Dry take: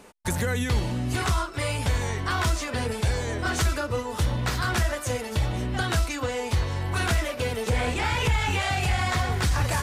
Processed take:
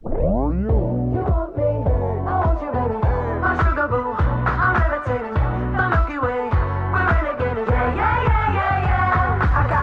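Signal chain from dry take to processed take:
turntable start at the beginning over 0.78 s
low-pass filter sweep 580 Hz → 1,300 Hz, 0:01.72–0:03.68
background noise brown −62 dBFS
level +5.5 dB

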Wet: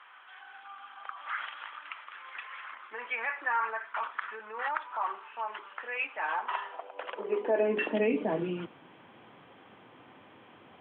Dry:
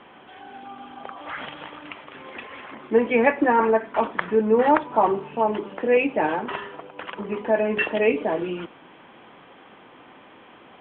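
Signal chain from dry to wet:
brickwall limiter −13.5 dBFS, peak gain reduction 10 dB
high-pass filter sweep 1,300 Hz → 97 Hz, 0:06.16–0:08.88
level −7 dB

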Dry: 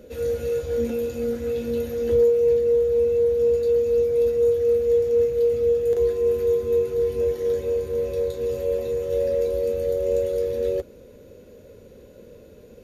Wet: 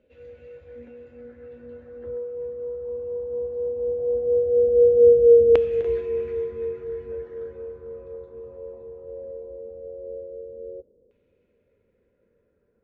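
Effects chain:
source passing by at 0:05.27, 9 m/s, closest 4.8 metres
auto-filter low-pass saw down 0.18 Hz 480–2,700 Hz

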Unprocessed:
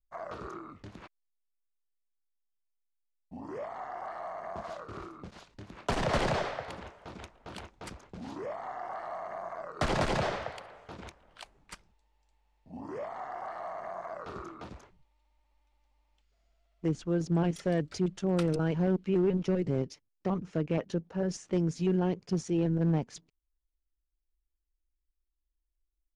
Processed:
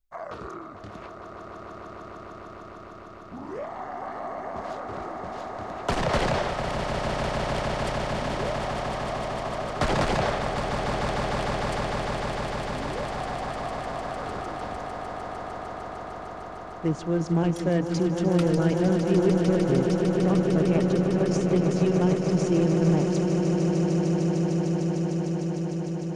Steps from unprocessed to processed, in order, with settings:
echo that builds up and dies away 151 ms, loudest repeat 8, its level −9 dB
level +4 dB

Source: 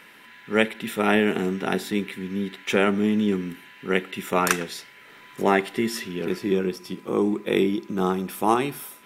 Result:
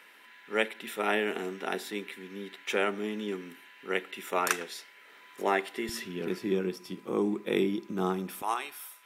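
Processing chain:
high-pass filter 360 Hz 12 dB per octave, from 0:05.89 120 Hz, from 0:08.42 900 Hz
level −6 dB

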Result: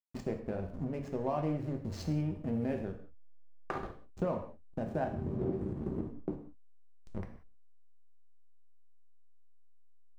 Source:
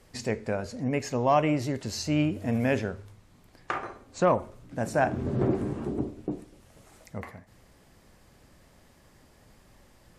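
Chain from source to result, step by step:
slack as between gear wheels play −29 dBFS
tilt shelving filter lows +6.5 dB, about 940 Hz
downward compressor 3 to 1, threshold −32 dBFS, peak gain reduction 12.5 dB
reverb whose tail is shaped and stops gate 210 ms falling, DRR 3.5 dB
level −3 dB

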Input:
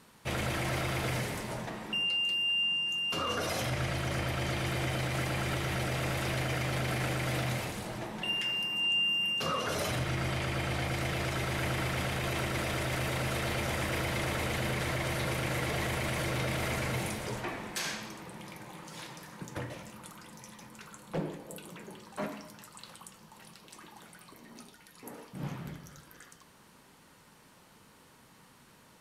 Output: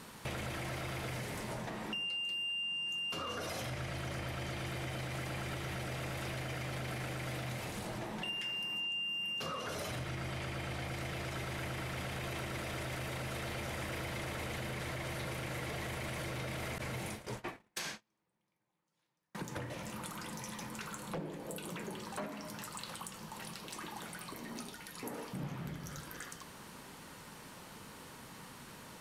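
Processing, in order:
0:16.78–0:19.35: noise gate −35 dBFS, range −46 dB
downward compressor 5 to 1, threshold −46 dBFS, peak gain reduction 16.5 dB
soft clipping −36 dBFS, distortion −26 dB
level +7.5 dB

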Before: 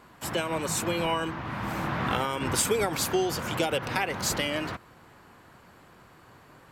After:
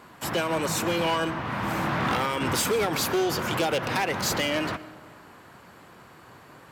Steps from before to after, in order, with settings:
dynamic equaliser 8,600 Hz, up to −7 dB, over −46 dBFS, Q 1.6
hard clipping −25 dBFS, distortion −11 dB
high-pass filter 100 Hz 6 dB per octave
convolution reverb RT60 1.6 s, pre-delay 80 ms, DRR 16.5 dB
level +4.5 dB

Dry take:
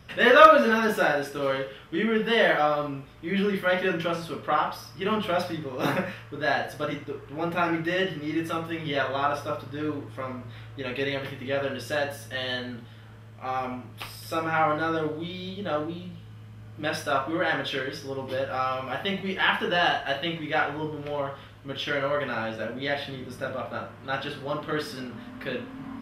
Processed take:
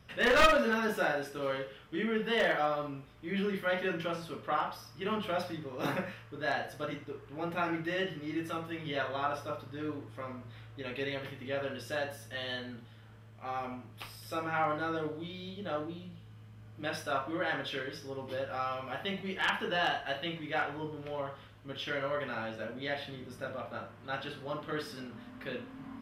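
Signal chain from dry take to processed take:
wavefolder on the positive side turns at −13 dBFS
level −7.5 dB

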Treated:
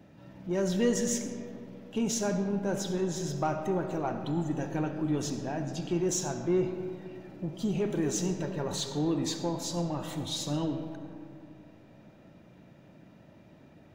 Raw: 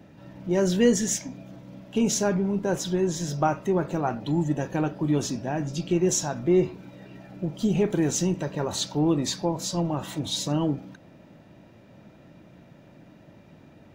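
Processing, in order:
in parallel at −5.5 dB: soft clipping −25.5 dBFS, distortion −8 dB
on the sum: convolution reverb RT60 2.6 s, pre-delay 30 ms, DRR 7 dB
level −8.5 dB

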